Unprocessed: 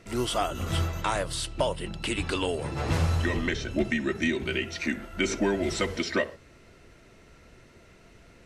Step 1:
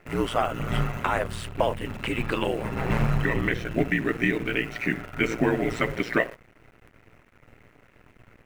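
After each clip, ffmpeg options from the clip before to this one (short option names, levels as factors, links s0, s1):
-af "aeval=exprs='val(0)*sin(2*PI*58*n/s)':c=same,acrusher=bits=8:dc=4:mix=0:aa=0.000001,highshelf=f=3100:t=q:w=1.5:g=-10,volume=1.78"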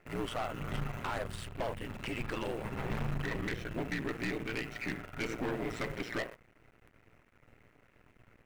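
-af "aeval=exprs='(tanh(15.8*val(0)+0.45)-tanh(0.45))/15.8':c=same,volume=0.501"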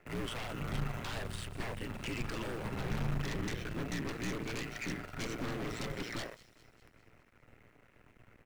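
-filter_complex "[0:a]acrossover=split=230|3400[s0][s1][s2];[s1]aeval=exprs='0.0141*(abs(mod(val(0)/0.0141+3,4)-2)-1)':c=same[s3];[s2]aecho=1:1:202|404|606|808|1010|1212:0.237|0.133|0.0744|0.0416|0.0233|0.0131[s4];[s0][s3][s4]amix=inputs=3:normalize=0,volume=1.12"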